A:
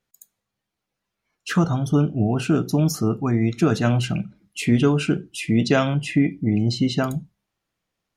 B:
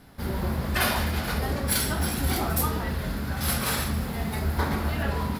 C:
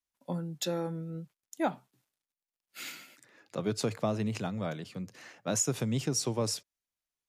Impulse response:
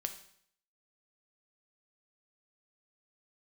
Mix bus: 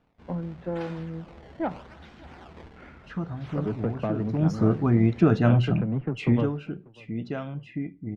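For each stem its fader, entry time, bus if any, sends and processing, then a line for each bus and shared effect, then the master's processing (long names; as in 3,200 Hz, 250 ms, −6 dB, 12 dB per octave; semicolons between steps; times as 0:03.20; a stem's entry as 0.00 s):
0:04.27 −15 dB → 0:04.51 −2.5 dB → 0:06.19 −2.5 dB → 0:06.59 −15.5 dB, 1.60 s, send −20.5 dB, no echo send, spectral tilt −2 dB per octave
−14.5 dB, 0.00 s, send −16 dB, no echo send, sample-and-hold swept by an LFO 20×, swing 160% 0.82 Hz; automatic ducking −6 dB, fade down 0.25 s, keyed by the third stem
−3.0 dB, 0.00 s, send −9.5 dB, echo send −21.5 dB, low-pass filter 1,700 Hz 24 dB per octave; low-shelf EQ 330 Hz +9 dB; harmonic generator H 8 −27 dB, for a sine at −12.5 dBFS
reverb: on, RT60 0.65 s, pre-delay 5 ms
echo: repeating echo 591 ms, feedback 38%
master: low-pass filter 3,300 Hz 12 dB per octave; low-shelf EQ 350 Hz −4 dB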